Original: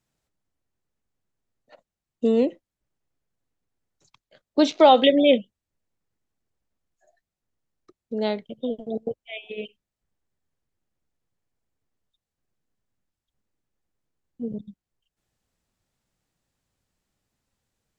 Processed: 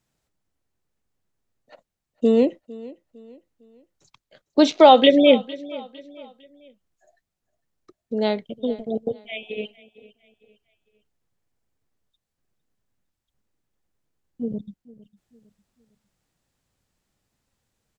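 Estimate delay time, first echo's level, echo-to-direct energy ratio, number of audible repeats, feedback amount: 0.455 s, -20.0 dB, -19.5 dB, 2, 38%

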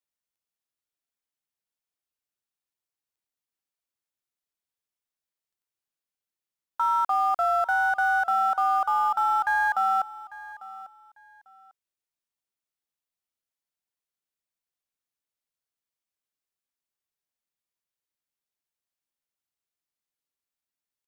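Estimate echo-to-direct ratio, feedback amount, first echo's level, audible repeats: -18.0 dB, 23%, -18.0 dB, 2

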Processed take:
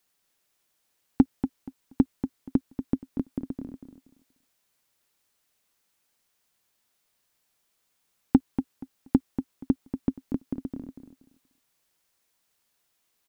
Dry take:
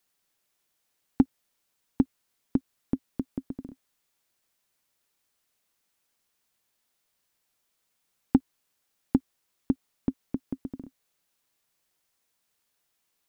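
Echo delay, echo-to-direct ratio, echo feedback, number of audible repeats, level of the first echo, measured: 0.238 s, -9.5 dB, 22%, 2, -9.5 dB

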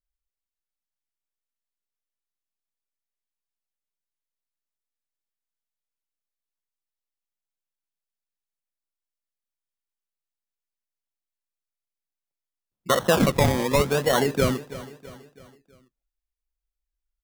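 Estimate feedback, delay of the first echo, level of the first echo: 48%, 0.327 s, -16.0 dB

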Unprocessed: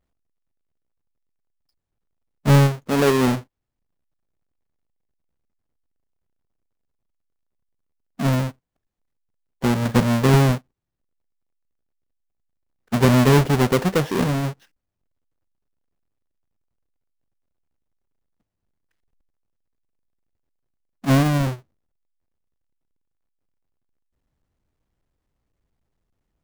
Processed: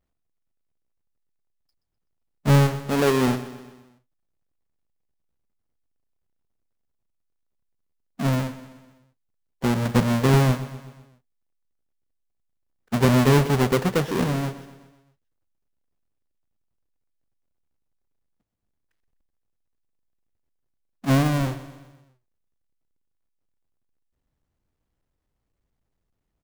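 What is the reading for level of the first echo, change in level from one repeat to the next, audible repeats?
-14.5 dB, -5.5 dB, 4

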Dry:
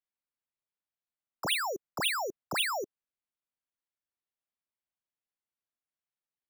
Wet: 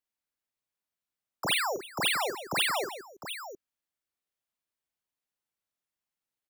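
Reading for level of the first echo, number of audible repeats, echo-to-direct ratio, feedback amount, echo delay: -6.0 dB, 3, -4.5 dB, no steady repeat, 46 ms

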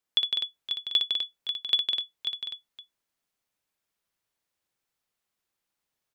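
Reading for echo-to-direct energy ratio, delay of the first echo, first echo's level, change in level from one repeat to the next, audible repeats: 0.0 dB, 60 ms, -6.0 dB, no steady repeat, 5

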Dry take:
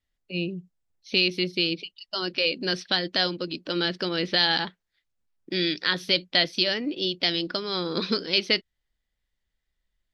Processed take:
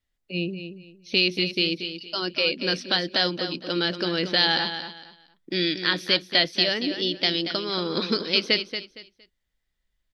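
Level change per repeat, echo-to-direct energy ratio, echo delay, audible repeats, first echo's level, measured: -12.0 dB, -9.0 dB, 0.231 s, 3, -9.5 dB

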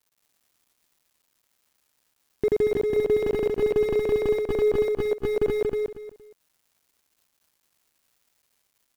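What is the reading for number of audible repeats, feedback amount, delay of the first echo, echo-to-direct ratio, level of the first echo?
3, 24%, 0.233 s, -3.5 dB, -4.0 dB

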